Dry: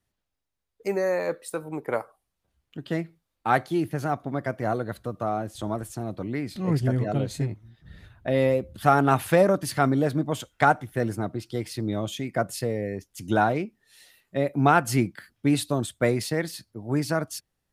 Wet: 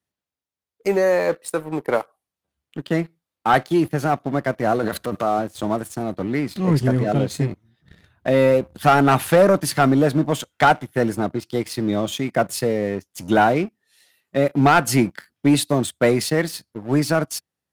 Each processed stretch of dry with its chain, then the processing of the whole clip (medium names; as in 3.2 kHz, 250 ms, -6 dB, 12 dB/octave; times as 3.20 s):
4.79–5.39 s: bass shelf 200 Hz -6.5 dB + transient shaper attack 0 dB, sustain +11 dB
whole clip: high-pass 75 Hz 24 dB/octave; peaking EQ 110 Hz -8 dB 0.36 oct; waveshaping leveller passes 2